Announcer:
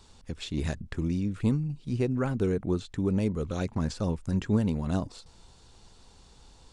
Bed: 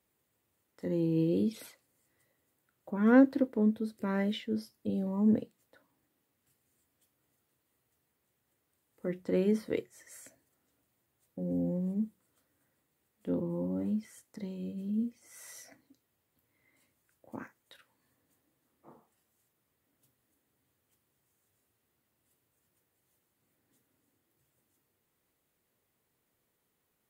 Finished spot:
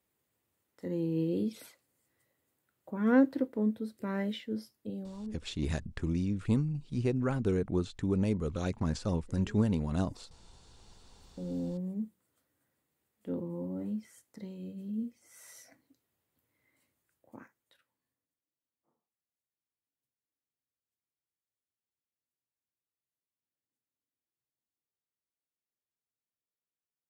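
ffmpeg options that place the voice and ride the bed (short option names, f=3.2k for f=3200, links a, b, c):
-filter_complex "[0:a]adelay=5050,volume=-2.5dB[a];[1:a]volume=17dB,afade=t=out:st=4.65:d=0.73:silence=0.0944061,afade=t=in:st=10.47:d=0.82:silence=0.105925,afade=t=out:st=16.71:d=1.66:silence=0.0841395[b];[a][b]amix=inputs=2:normalize=0"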